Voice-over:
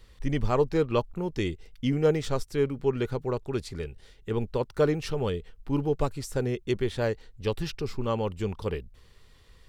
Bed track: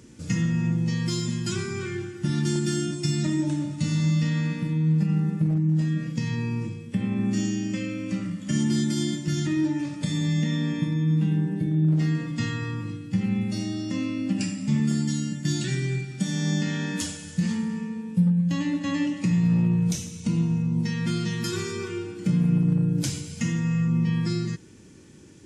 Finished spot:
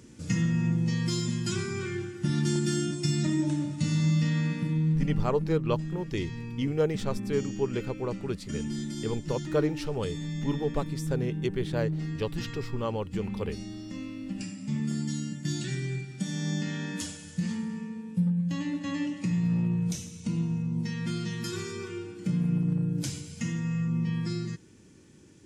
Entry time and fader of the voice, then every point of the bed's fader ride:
4.75 s, -3.0 dB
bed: 4.76 s -2 dB
5.35 s -10 dB
14.30 s -10 dB
15.13 s -5.5 dB

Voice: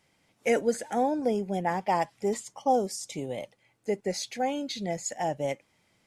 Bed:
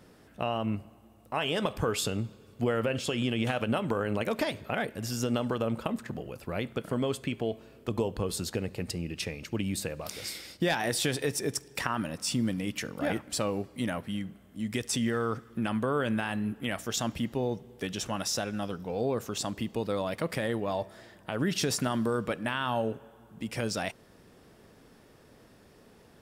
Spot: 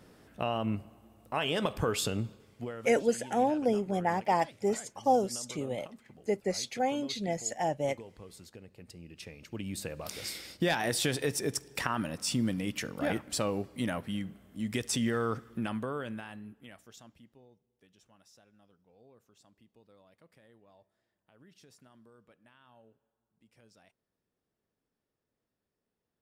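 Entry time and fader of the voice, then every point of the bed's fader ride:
2.40 s, -1.0 dB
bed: 2.29 s -1 dB
2.94 s -18 dB
8.70 s -18 dB
10.13 s -1 dB
15.47 s -1 dB
17.55 s -30.5 dB

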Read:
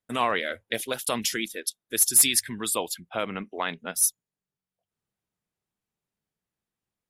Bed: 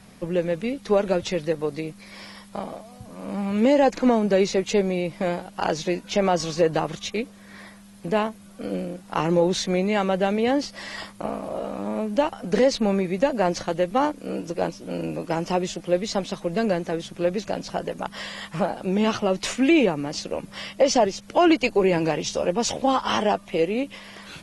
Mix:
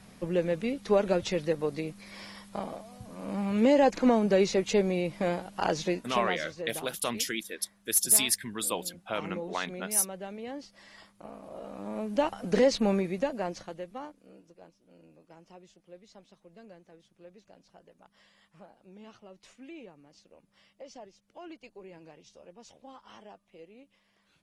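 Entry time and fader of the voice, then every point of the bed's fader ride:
5.95 s, -4.0 dB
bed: 5.88 s -4 dB
6.52 s -18 dB
11.16 s -18 dB
12.32 s -4 dB
12.92 s -4 dB
14.61 s -28.5 dB

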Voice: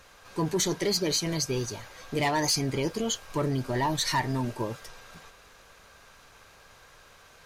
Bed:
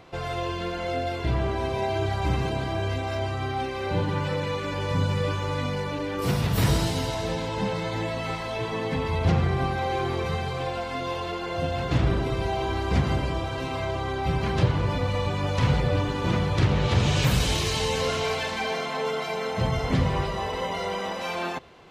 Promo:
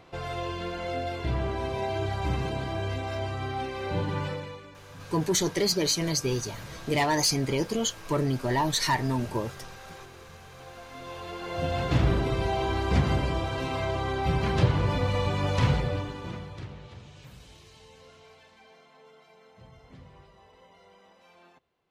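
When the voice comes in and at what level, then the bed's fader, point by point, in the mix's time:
4.75 s, +1.5 dB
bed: 4.25 s -3.5 dB
4.81 s -22 dB
10.38 s -22 dB
11.73 s -0.5 dB
15.63 s -0.5 dB
17.10 s -27 dB

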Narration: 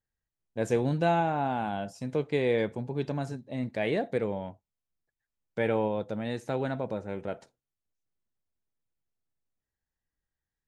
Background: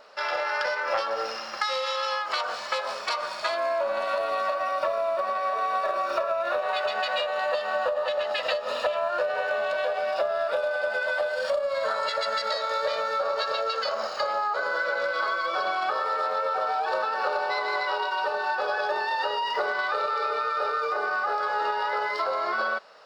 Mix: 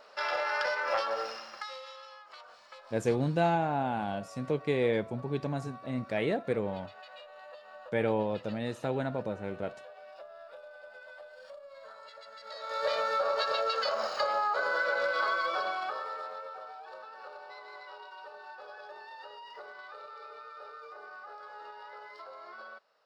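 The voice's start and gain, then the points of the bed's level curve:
2.35 s, -1.5 dB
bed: 1.13 s -3.5 dB
2.12 s -22.5 dB
12.36 s -22.5 dB
12.88 s -2.5 dB
15.41 s -2.5 dB
16.79 s -20 dB

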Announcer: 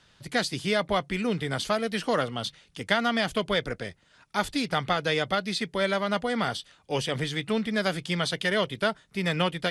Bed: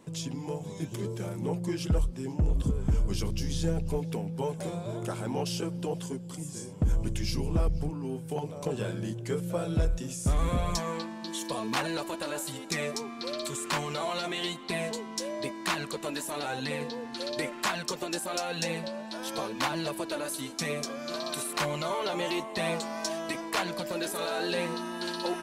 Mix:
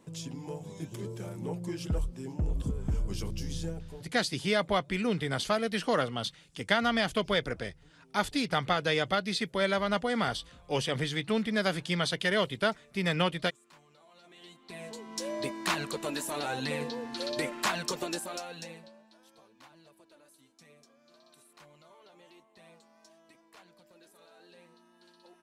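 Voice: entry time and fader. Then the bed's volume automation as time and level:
3.80 s, -2.0 dB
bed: 3.57 s -4.5 dB
4.42 s -28.5 dB
14.06 s -28.5 dB
15.30 s 0 dB
18.05 s 0 dB
19.35 s -26.5 dB

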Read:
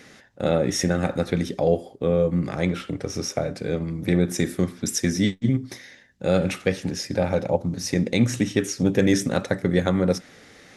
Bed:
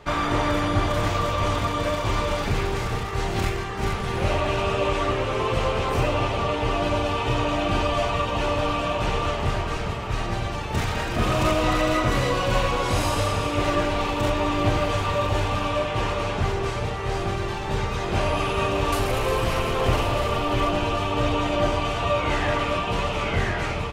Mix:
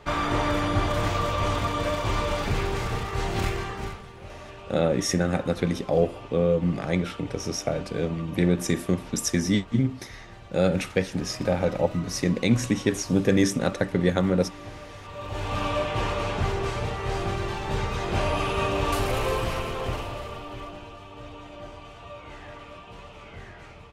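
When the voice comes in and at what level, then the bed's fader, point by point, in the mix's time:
4.30 s, -1.5 dB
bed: 3.70 s -2 dB
4.13 s -19 dB
15.01 s -19 dB
15.60 s -2 dB
19.25 s -2 dB
20.97 s -19 dB

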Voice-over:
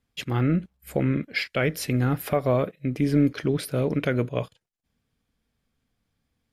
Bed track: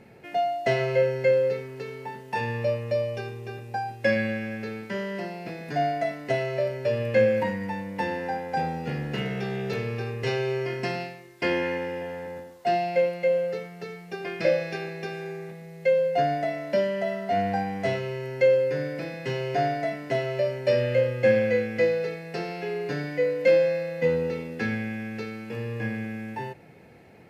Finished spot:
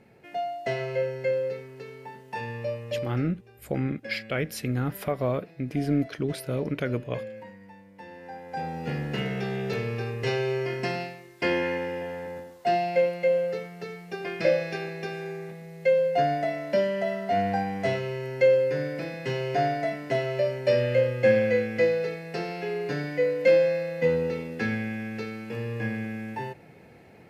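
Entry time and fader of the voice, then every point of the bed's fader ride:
2.75 s, -4.5 dB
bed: 3.03 s -5.5 dB
3.35 s -17.5 dB
7.99 s -17.5 dB
8.89 s 0 dB

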